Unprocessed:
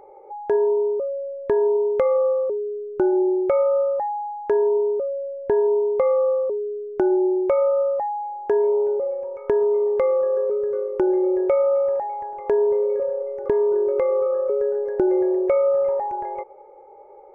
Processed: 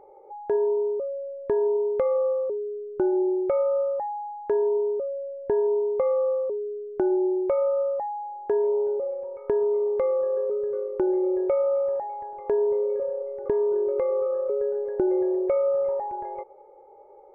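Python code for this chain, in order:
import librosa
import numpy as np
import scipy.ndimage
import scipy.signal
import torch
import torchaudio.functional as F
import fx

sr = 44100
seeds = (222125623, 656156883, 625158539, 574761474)

y = fx.high_shelf(x, sr, hz=2000.0, db=-10.5)
y = F.gain(torch.from_numpy(y), -3.5).numpy()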